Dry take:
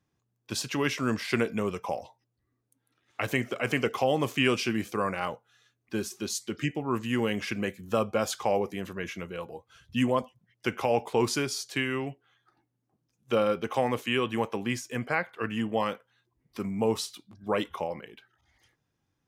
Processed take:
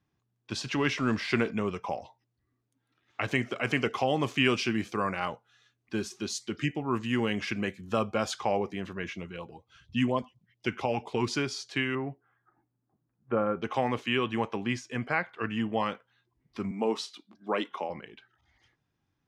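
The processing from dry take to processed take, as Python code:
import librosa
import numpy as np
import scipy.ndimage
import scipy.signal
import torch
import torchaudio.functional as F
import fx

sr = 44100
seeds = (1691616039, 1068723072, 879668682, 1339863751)

y = fx.law_mismatch(x, sr, coded='mu', at=(0.65, 1.51))
y = fx.high_shelf(y, sr, hz=7600.0, db=8.0, at=(3.31, 8.41))
y = fx.filter_lfo_notch(y, sr, shape='sine', hz=4.2, low_hz=500.0, high_hz=1800.0, q=1.2, at=(9.13, 11.32))
y = fx.lowpass(y, sr, hz=1700.0, slope=24, at=(11.95, 13.62))
y = fx.highpass(y, sr, hz=220.0, slope=24, at=(16.71, 17.9))
y = scipy.signal.sosfilt(scipy.signal.butter(2, 5000.0, 'lowpass', fs=sr, output='sos'), y)
y = fx.peak_eq(y, sr, hz=510.0, db=-4.5, octaves=0.4)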